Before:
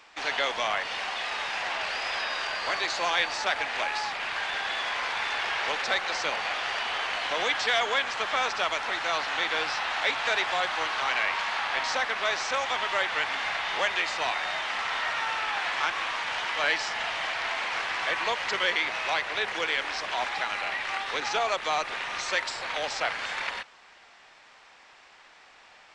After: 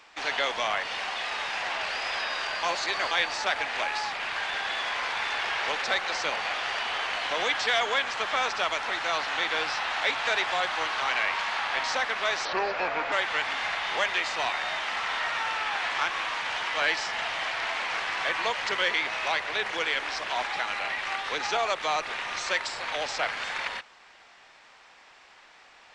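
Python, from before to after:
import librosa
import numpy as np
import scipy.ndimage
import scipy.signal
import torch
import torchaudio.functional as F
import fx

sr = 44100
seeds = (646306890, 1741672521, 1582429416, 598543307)

y = fx.edit(x, sr, fx.reverse_span(start_s=2.63, length_s=0.48),
    fx.speed_span(start_s=12.45, length_s=0.49, speed=0.73), tone=tone)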